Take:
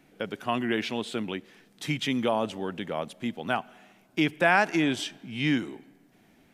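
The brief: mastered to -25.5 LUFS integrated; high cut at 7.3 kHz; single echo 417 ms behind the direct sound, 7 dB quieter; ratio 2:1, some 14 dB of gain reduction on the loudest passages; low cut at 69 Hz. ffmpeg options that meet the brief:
-af "highpass=69,lowpass=7300,acompressor=threshold=0.00708:ratio=2,aecho=1:1:417:0.447,volume=4.73"

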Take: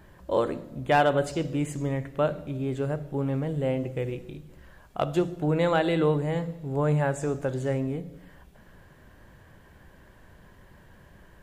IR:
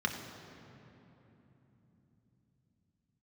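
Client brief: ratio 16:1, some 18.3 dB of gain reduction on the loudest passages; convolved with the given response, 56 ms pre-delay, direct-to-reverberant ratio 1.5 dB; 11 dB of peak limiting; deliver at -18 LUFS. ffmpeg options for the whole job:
-filter_complex "[0:a]acompressor=threshold=0.0158:ratio=16,alimiter=level_in=3.35:limit=0.0631:level=0:latency=1,volume=0.299,asplit=2[s0][s1];[1:a]atrim=start_sample=2205,adelay=56[s2];[s1][s2]afir=irnorm=-1:irlink=0,volume=0.376[s3];[s0][s3]amix=inputs=2:normalize=0,volume=14.1"

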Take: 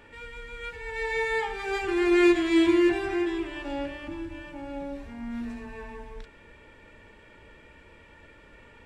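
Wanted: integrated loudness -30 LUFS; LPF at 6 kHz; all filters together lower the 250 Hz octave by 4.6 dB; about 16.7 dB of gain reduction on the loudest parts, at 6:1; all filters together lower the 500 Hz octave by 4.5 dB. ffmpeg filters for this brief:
-af "lowpass=6000,equalizer=f=250:t=o:g=-5,equalizer=f=500:t=o:g=-4,acompressor=threshold=0.0112:ratio=6,volume=4.47"

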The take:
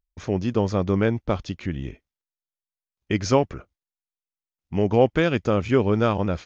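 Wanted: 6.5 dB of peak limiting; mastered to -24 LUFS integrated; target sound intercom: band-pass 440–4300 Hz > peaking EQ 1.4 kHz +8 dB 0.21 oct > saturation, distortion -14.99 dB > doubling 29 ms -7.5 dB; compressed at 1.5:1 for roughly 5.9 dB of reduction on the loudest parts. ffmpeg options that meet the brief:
-filter_complex "[0:a]acompressor=threshold=0.0355:ratio=1.5,alimiter=limit=0.126:level=0:latency=1,highpass=440,lowpass=4300,equalizer=f=1400:t=o:w=0.21:g=8,asoftclip=threshold=0.0668,asplit=2[s0][s1];[s1]adelay=29,volume=0.422[s2];[s0][s2]amix=inputs=2:normalize=0,volume=3.76"

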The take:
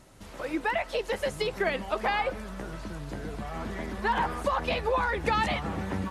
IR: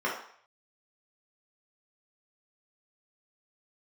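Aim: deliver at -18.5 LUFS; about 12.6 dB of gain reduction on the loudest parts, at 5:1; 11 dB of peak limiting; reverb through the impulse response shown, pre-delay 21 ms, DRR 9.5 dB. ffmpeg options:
-filter_complex "[0:a]acompressor=threshold=0.0141:ratio=5,alimiter=level_in=3.76:limit=0.0631:level=0:latency=1,volume=0.266,asplit=2[s0][s1];[1:a]atrim=start_sample=2205,adelay=21[s2];[s1][s2]afir=irnorm=-1:irlink=0,volume=0.0944[s3];[s0][s3]amix=inputs=2:normalize=0,volume=18.8"

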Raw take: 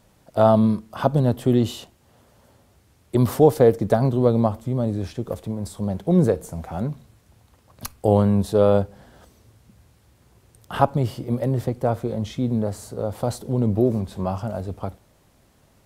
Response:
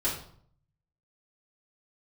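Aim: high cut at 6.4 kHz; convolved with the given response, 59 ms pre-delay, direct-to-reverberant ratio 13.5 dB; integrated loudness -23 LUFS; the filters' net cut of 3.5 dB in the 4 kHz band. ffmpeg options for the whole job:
-filter_complex "[0:a]lowpass=6400,equalizer=f=4000:t=o:g=-4,asplit=2[s0][s1];[1:a]atrim=start_sample=2205,adelay=59[s2];[s1][s2]afir=irnorm=-1:irlink=0,volume=0.0891[s3];[s0][s3]amix=inputs=2:normalize=0,volume=0.841"

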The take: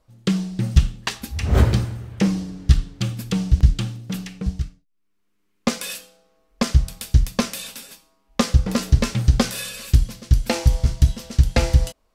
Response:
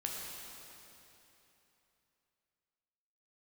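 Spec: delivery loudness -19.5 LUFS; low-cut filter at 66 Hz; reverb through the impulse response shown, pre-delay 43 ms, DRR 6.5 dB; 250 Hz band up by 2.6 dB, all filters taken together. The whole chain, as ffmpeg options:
-filter_complex "[0:a]highpass=66,equalizer=f=250:t=o:g=3.5,asplit=2[s0][s1];[1:a]atrim=start_sample=2205,adelay=43[s2];[s1][s2]afir=irnorm=-1:irlink=0,volume=0.376[s3];[s0][s3]amix=inputs=2:normalize=0,volume=1.26"

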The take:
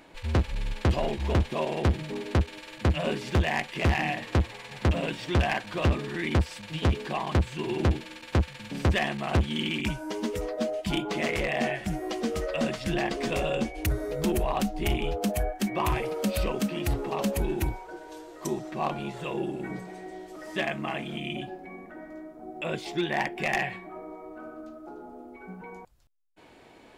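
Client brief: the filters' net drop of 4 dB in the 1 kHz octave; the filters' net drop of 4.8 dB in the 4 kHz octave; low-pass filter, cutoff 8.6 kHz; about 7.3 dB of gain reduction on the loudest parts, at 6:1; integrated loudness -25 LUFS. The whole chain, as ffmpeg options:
-af "lowpass=8600,equalizer=f=1000:t=o:g=-5.5,equalizer=f=4000:t=o:g=-6.5,acompressor=threshold=0.0398:ratio=6,volume=2.99"

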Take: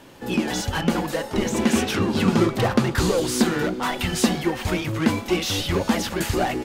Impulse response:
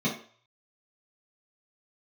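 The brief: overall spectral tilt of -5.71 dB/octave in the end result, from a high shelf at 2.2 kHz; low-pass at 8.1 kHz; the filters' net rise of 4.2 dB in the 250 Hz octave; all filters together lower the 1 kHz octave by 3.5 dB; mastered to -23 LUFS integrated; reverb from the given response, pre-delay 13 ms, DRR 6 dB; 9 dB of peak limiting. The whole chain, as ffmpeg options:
-filter_complex "[0:a]lowpass=8100,equalizer=f=250:t=o:g=5.5,equalizer=f=1000:t=o:g=-6,highshelf=f=2200:g=4,alimiter=limit=0.266:level=0:latency=1,asplit=2[s0][s1];[1:a]atrim=start_sample=2205,adelay=13[s2];[s1][s2]afir=irnorm=-1:irlink=0,volume=0.168[s3];[s0][s3]amix=inputs=2:normalize=0,volume=0.447"

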